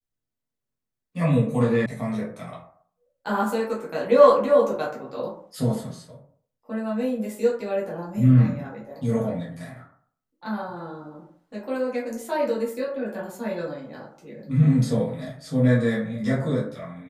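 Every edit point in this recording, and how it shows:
1.86 s: sound stops dead

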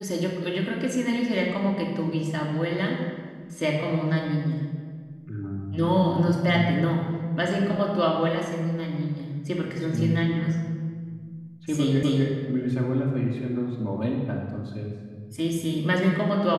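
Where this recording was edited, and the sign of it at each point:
12.03 s: repeat of the last 0.25 s

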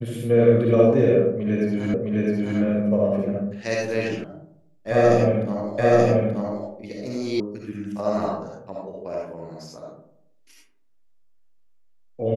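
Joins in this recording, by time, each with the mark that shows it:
1.94 s: repeat of the last 0.66 s
4.24 s: sound stops dead
5.78 s: repeat of the last 0.88 s
7.40 s: sound stops dead

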